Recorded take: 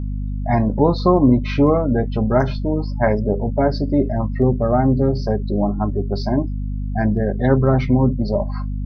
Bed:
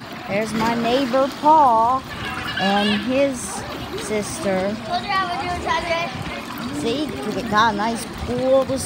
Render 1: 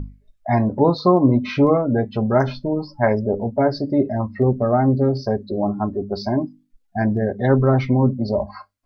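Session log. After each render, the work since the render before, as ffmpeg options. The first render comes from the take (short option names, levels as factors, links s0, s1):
-af "bandreject=f=50:t=h:w=6,bandreject=f=100:t=h:w=6,bandreject=f=150:t=h:w=6,bandreject=f=200:t=h:w=6,bandreject=f=250:t=h:w=6,bandreject=f=300:t=h:w=6"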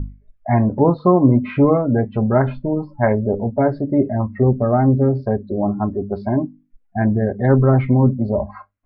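-af "lowpass=f=2400:w=0.5412,lowpass=f=2400:w=1.3066,lowshelf=f=210:g=5"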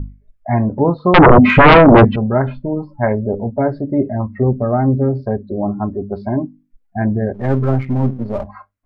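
-filter_complex "[0:a]asettb=1/sr,asplit=3[s0][s1][s2];[s0]atrim=end=1.144[s3];[s1]atrim=start=1.14:end=2.16,asetpts=PTS-STARTPTS,afade=t=in:d=0.004:c=qsin,afade=t=out:st=1.016:d=0.004:c=qsin,aeval=exprs='0.794*sin(PI/2*5.01*val(0)/0.794)':c=same[s4];[s2]atrim=start=2.156[s5];[s3][s4]acrossfade=d=0.004:c1=hsin:c2=qsin[s6];[s6][s5]acrossfade=d=0.004:c1=qsin:c2=hsin,asettb=1/sr,asplit=3[s7][s8][s9];[s7]atrim=end=7.344[s10];[s8]atrim=start=7.34:end=8.47,asetpts=PTS-STARTPTS,afade=t=in:d=0.004:c=qsin,afade=t=out:st=1.126:d=0.004:c=qsin,aeval=exprs='if(lt(val(0),0),0.447*val(0),val(0))':c=same[s11];[s9]atrim=start=8.466[s12];[s10][s11]acrossfade=d=0.004:c1=hsin:c2=qsin[s13];[s13][s12]acrossfade=d=0.004:c1=qsin:c2=hsin"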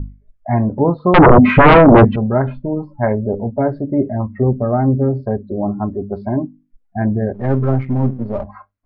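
-af "lowpass=f=2000:p=1"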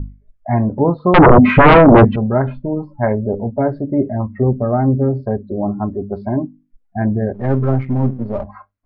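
-af anull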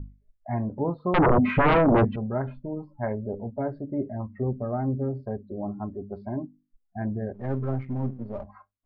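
-af "volume=0.237"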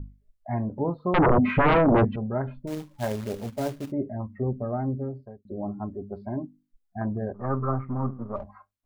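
-filter_complex "[0:a]asettb=1/sr,asplit=3[s0][s1][s2];[s0]atrim=end=2.674[s3];[s1]atrim=start=2.67:end=3.92,asetpts=PTS-STARTPTS,afade=t=in:d=0.004:c=qsin,afade=t=out:st=1.246:d=0.004:c=qsin,acrusher=bits=3:mode=log:mix=0:aa=0.000001[s4];[s2]atrim=start=3.916[s5];[s3][s4]acrossfade=d=0.004:c1=hsin:c2=qsin[s6];[s6][s5]acrossfade=d=0.004:c1=qsin:c2=hsin,asettb=1/sr,asplit=3[s7][s8][s9];[s7]atrim=end=7.014[s10];[s8]atrim=start=7.01:end=8.36,asetpts=PTS-STARTPTS,afade=t=in:d=0.004:c=qsin,afade=t=out:st=1.346:d=0.004:c=qsin,lowpass=f=1200:t=q:w=11[s11];[s9]atrim=start=8.356[s12];[s10][s11]acrossfade=d=0.004:c1=hsin:c2=qsin[s13];[s13][s12]acrossfade=d=0.004:c1=qsin:c2=hsin,asplit=2[s14][s15];[s14]atrim=end=5.45,asetpts=PTS-STARTPTS,afade=t=out:st=4.59:d=0.86:c=qsin[s16];[s15]atrim=start=5.45,asetpts=PTS-STARTPTS,afade=t=in:d=0.004:c=hsin[s17];[s16][s17]concat=n=2:v=0:a=1"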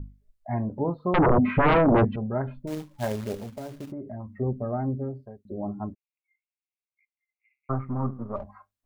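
-filter_complex "[0:a]asettb=1/sr,asplit=3[s0][s1][s2];[s0]atrim=end=1.164[s3];[s1]atrim=start=1.16:end=1.63,asetpts=PTS-STARTPTS,afade=t=in:d=0.004:c=qsin,afade=t=out:st=0.466:d=0.004:c=qsin,highshelf=f=3500:g=-12[s4];[s2]atrim=start=1.626[s5];[s3][s4]acrossfade=d=0.004:c1=hsin:c2=qsin[s6];[s6][s5]acrossfade=d=0.004:c1=qsin:c2=hsin,asettb=1/sr,asplit=3[s7][s8][s9];[s7]atrim=end=3.354[s10];[s8]atrim=start=3.35:end=4.35,asetpts=PTS-STARTPTS,afade=t=in:d=0.004:c=qsin,afade=t=out:st=0.996:d=0.004:c=qsin,acompressor=threshold=0.0251:ratio=10:attack=3.2:release=140:knee=1:detection=peak[s11];[s9]atrim=start=4.346[s12];[s10][s11]acrossfade=d=0.004:c1=hsin:c2=qsin[s13];[s13][s12]acrossfade=d=0.004:c1=qsin:c2=hsin,asplit=3[s14][s15][s16];[s14]afade=t=out:st=5.93:d=0.02[s17];[s15]asuperpass=centerf=2400:order=20:qfactor=3,afade=t=in:st=5.93:d=0.02,afade=t=out:st=7.69:d=0.02[s18];[s16]afade=t=in:st=7.69:d=0.02[s19];[s17][s18][s19]amix=inputs=3:normalize=0"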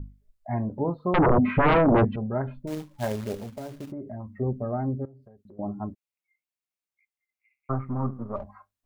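-filter_complex "[0:a]asettb=1/sr,asplit=3[s0][s1][s2];[s0]atrim=end=5.054[s3];[s1]atrim=start=5.05:end=5.59,asetpts=PTS-STARTPTS,afade=t=in:d=0.004:c=qsin,afade=t=out:st=0.536:d=0.004:c=qsin,acompressor=threshold=0.00447:ratio=8:attack=3.2:release=140:knee=1:detection=peak[s4];[s2]atrim=start=5.586[s5];[s3][s4]acrossfade=d=0.004:c1=hsin:c2=qsin[s6];[s6][s5]acrossfade=d=0.004:c1=qsin:c2=hsin"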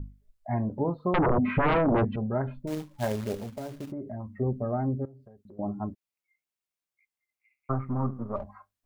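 -af "acompressor=threshold=0.0891:ratio=6"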